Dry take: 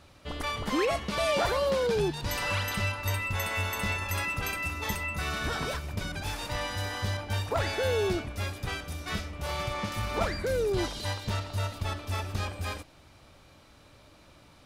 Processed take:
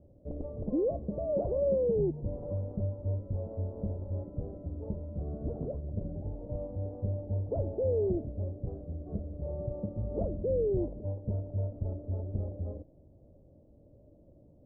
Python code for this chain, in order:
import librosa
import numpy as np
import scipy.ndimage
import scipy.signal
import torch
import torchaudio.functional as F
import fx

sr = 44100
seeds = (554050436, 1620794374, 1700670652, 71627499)

y = scipy.signal.sosfilt(scipy.signal.ellip(4, 1.0, 80, 590.0, 'lowpass', fs=sr, output='sos'), x)